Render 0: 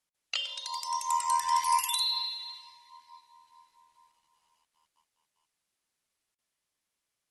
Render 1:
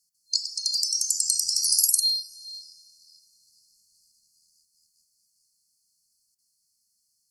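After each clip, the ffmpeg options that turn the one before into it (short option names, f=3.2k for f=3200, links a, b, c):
-af "highshelf=f=2.3k:t=q:w=3:g=10,bandreject=f=62.71:t=h:w=4,bandreject=f=125.42:t=h:w=4,bandreject=f=188.13:t=h:w=4,bandreject=f=250.84:t=h:w=4,bandreject=f=313.55:t=h:w=4,bandreject=f=376.26:t=h:w=4,bandreject=f=438.97:t=h:w=4,bandreject=f=501.68:t=h:w=4,bandreject=f=564.39:t=h:w=4,bandreject=f=627.1:t=h:w=4,bandreject=f=689.81:t=h:w=4,bandreject=f=752.52:t=h:w=4,bandreject=f=815.23:t=h:w=4,bandreject=f=877.94:t=h:w=4,bandreject=f=940.65:t=h:w=4,bandreject=f=1.00336k:t=h:w=4,bandreject=f=1.06607k:t=h:w=4,bandreject=f=1.12878k:t=h:w=4,bandreject=f=1.19149k:t=h:w=4,bandreject=f=1.2542k:t=h:w=4,bandreject=f=1.31691k:t=h:w=4,bandreject=f=1.37962k:t=h:w=4,bandreject=f=1.44233k:t=h:w=4,bandreject=f=1.50504k:t=h:w=4,bandreject=f=1.56775k:t=h:w=4,bandreject=f=1.63046k:t=h:w=4,bandreject=f=1.69317k:t=h:w=4,bandreject=f=1.75588k:t=h:w=4,afftfilt=real='re*(1-between(b*sr/4096,240,4200))':imag='im*(1-between(b*sr/4096,240,4200))':win_size=4096:overlap=0.75,volume=3dB"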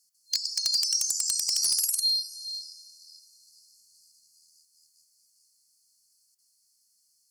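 -af "lowshelf=f=480:g=-9.5,acompressor=threshold=-25dB:ratio=6,asoftclip=type=hard:threshold=-21.5dB,volume=4dB"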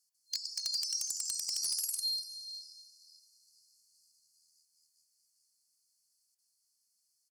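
-af "aecho=1:1:242:0.168,volume=-9dB"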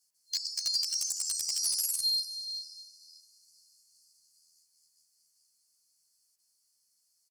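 -filter_complex "[0:a]asplit=2[a][b];[b]adelay=11.8,afreqshift=0.41[c];[a][c]amix=inputs=2:normalize=1,volume=7dB"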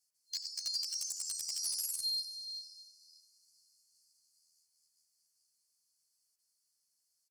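-af "aecho=1:1:89:0.168,volume=-6.5dB"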